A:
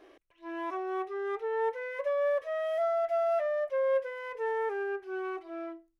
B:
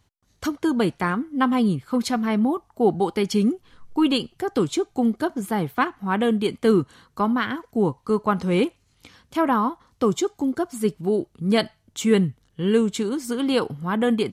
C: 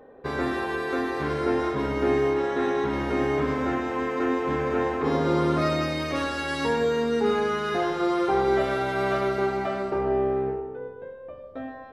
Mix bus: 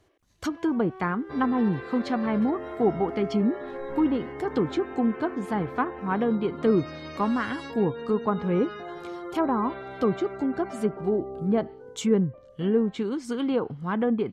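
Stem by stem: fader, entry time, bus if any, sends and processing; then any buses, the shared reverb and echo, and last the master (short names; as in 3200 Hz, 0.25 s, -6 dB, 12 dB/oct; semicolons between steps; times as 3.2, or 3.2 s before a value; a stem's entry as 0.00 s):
-11.0 dB, 0.00 s, no send, sustainer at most 140 dB/s
-3.5 dB, 0.00 s, no send, treble ducked by the level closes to 1000 Hz, closed at -16 dBFS
-9.5 dB, 1.05 s, no send, spectral gate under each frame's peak -30 dB strong; limiter -20.5 dBFS, peak gain reduction 9 dB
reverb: off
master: dry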